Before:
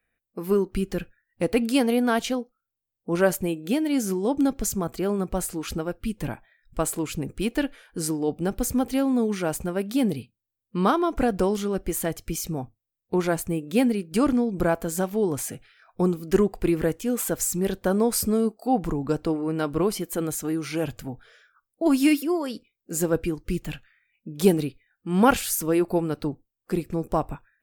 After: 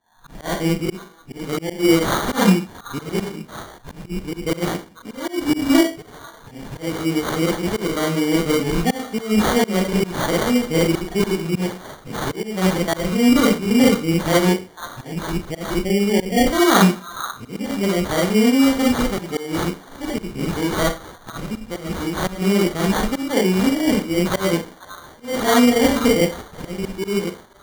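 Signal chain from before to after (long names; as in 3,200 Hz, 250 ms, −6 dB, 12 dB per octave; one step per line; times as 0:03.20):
played backwards from end to start
four-comb reverb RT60 0.33 s, combs from 33 ms, DRR −4.5 dB
volume swells 218 ms
time-frequency box erased 0:15.13–0:16.47, 940–8,700 Hz
echo through a band-pass that steps 489 ms, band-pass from 1,700 Hz, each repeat 1.4 octaves, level −6 dB
decimation without filtering 17×
level +1.5 dB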